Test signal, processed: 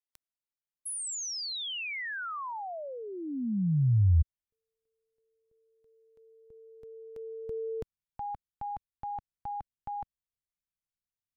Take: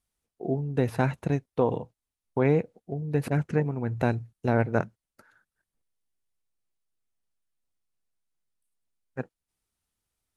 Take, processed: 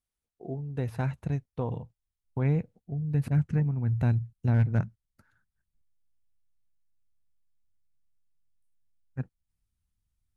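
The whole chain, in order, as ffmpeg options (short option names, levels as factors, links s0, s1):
-af "asubboost=boost=9:cutoff=150,asoftclip=type=hard:threshold=0.422,volume=0.398"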